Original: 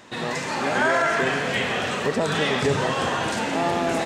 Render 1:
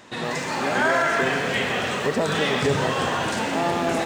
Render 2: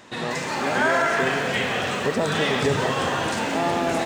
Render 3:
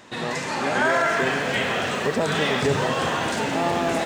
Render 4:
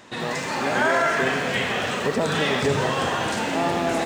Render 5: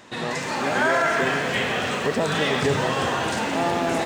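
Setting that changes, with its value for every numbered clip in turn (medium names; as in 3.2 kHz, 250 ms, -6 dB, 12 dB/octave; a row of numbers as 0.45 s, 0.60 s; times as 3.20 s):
bit-crushed delay, time: 123 ms, 183 ms, 736 ms, 81 ms, 293 ms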